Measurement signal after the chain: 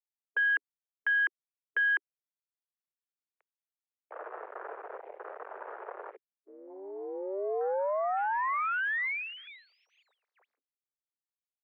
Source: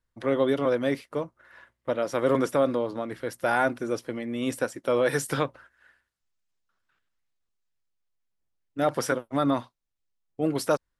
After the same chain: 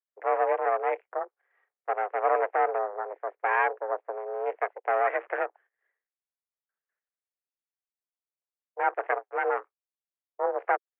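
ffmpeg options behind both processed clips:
-af "aeval=exprs='max(val(0),0)':c=same,afwtdn=0.00794,highpass=f=230:t=q:w=0.5412,highpass=f=230:t=q:w=1.307,lowpass=f=2100:t=q:w=0.5176,lowpass=f=2100:t=q:w=0.7071,lowpass=f=2100:t=q:w=1.932,afreqshift=190,volume=1.5"

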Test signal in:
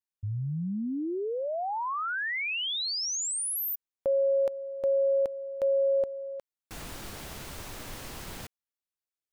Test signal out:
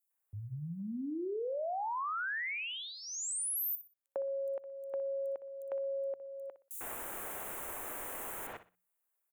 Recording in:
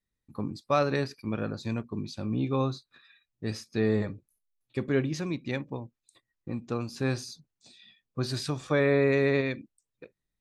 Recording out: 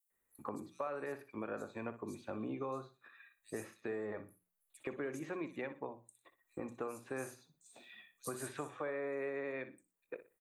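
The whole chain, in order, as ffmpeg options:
-filter_complex "[0:a]alimiter=limit=0.0841:level=0:latency=1:release=98,bandreject=f=60:t=h:w=6,bandreject=f=120:t=h:w=6,bandreject=f=180:t=h:w=6,acrossover=split=4600[s0][s1];[s0]adelay=100[s2];[s2][s1]amix=inputs=2:normalize=0,aexciter=amount=9.4:drive=2.4:freq=6800,acrossover=split=350 2400:gain=0.126 1 0.158[s3][s4][s5];[s3][s4][s5]amix=inputs=3:normalize=0,acompressor=threshold=0.00501:ratio=4:attack=7.2:release=673:knee=1:detection=rms,equalizer=f=4900:w=2.4:g=-7,asplit=2[s6][s7];[s7]aecho=0:1:61|122|183:0.224|0.0582|0.0151[s8];[s6][s8]amix=inputs=2:normalize=0,volume=2.66"

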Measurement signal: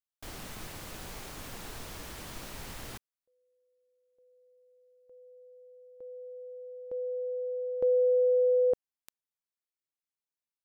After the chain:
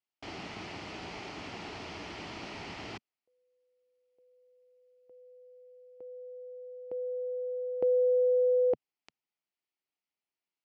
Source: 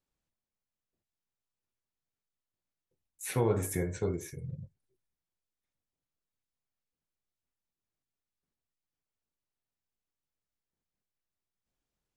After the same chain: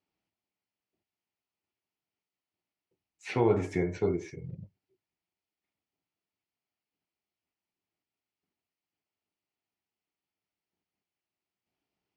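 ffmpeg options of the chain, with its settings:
-af "highpass=140,equalizer=f=140:t=q:w=4:g=-9,equalizer=f=230:t=q:w=4:g=-5,equalizer=f=520:t=q:w=4:g=-9,equalizer=f=1100:t=q:w=4:g=-6,equalizer=f=1600:t=q:w=4:g=-9,equalizer=f=3700:t=q:w=4:g=-9,lowpass=f=4400:w=0.5412,lowpass=f=4400:w=1.3066,volume=2.37"

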